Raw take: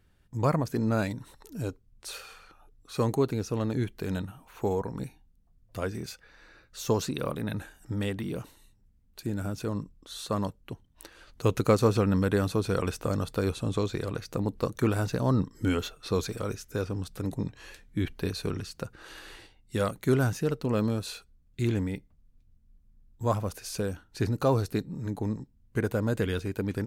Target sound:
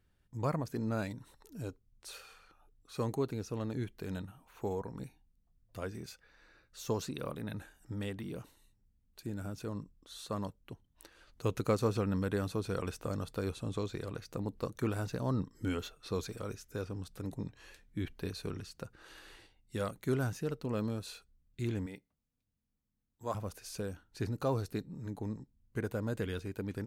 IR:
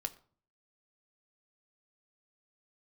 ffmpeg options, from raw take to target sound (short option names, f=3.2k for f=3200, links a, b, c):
-filter_complex "[0:a]asettb=1/sr,asplit=3[a][b][c];[a]atrim=end=21.864[d];[b]atrim=start=21.86:end=23.35,asetpts=PTS-STARTPTS,afade=t=in:d=0.004:c=qsin,afade=t=out:st=1.486:d=0.004:c=qsin,highpass=f=360:p=1[e];[c]atrim=start=23.346[f];[d][e]acrossfade=d=0.004:c1=hsin:c2=qsin[g];[g][f]acrossfade=d=0.004:c1=qsin:c2=hsin,volume=-8dB"